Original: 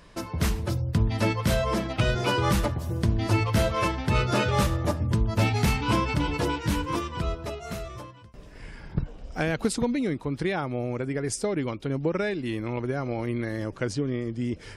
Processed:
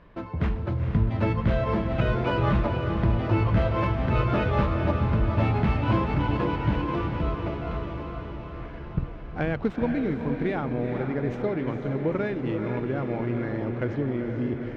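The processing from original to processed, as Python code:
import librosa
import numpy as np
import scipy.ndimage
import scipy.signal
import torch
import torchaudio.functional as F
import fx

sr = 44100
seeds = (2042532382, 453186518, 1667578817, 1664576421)

y = scipy.ndimage.median_filter(x, 9, mode='constant')
y = fx.air_absorb(y, sr, metres=280.0)
y = fx.echo_diffused(y, sr, ms=461, feedback_pct=66, wet_db=-6.0)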